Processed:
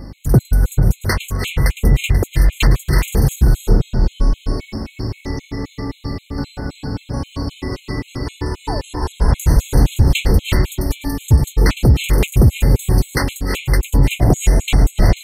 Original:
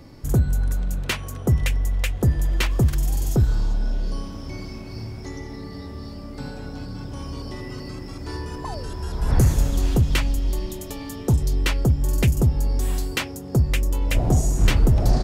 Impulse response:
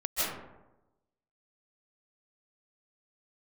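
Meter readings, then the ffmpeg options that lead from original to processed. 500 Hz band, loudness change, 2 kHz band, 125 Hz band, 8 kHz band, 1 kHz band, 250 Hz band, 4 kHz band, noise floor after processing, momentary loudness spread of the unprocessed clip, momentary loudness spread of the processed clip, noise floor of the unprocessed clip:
+7.0 dB, +5.5 dB, +6.5 dB, +6.0 dB, +5.5 dB, +7.5 dB, +6.5 dB, +6.0 dB, −47 dBFS, 15 LU, 12 LU, −36 dBFS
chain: -filter_complex "[0:a]bandreject=frequency=6100:width=15,aeval=exprs='val(0)+0.01*(sin(2*PI*50*n/s)+sin(2*PI*2*50*n/s)/2+sin(2*PI*3*50*n/s)/3+sin(2*PI*4*50*n/s)/4+sin(2*PI*5*50*n/s)/5)':channel_layout=same,asplit=2[link_01][link_02];[1:a]atrim=start_sample=2205,asetrate=30429,aresample=44100,adelay=108[link_03];[link_02][link_03]afir=irnorm=-1:irlink=0,volume=-14dB[link_04];[link_01][link_04]amix=inputs=2:normalize=0,alimiter=level_in=10dB:limit=-1dB:release=50:level=0:latency=1,afftfilt=real='re*gt(sin(2*PI*3.8*pts/sr)*(1-2*mod(floor(b*sr/1024/2100),2)),0)':imag='im*gt(sin(2*PI*3.8*pts/sr)*(1-2*mod(floor(b*sr/1024/2100),2)),0)':win_size=1024:overlap=0.75,volume=-1dB"

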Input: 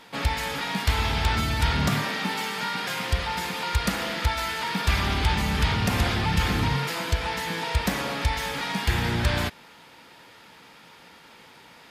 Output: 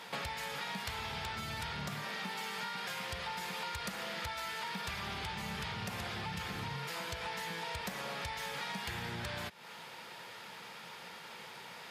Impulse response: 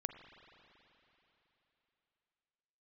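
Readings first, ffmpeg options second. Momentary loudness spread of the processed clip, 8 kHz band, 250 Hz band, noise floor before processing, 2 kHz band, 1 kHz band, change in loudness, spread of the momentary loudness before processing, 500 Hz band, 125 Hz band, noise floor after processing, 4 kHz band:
9 LU, −11.5 dB, −16.5 dB, −51 dBFS, −11.5 dB, −11.5 dB, −14.0 dB, 4 LU, −12.5 dB, −19.0 dB, −50 dBFS, −11.5 dB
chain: -af "highpass=130,equalizer=frequency=280:width_type=o:width=0.37:gain=-13,acompressor=threshold=-38dB:ratio=16,volume=1.5dB"

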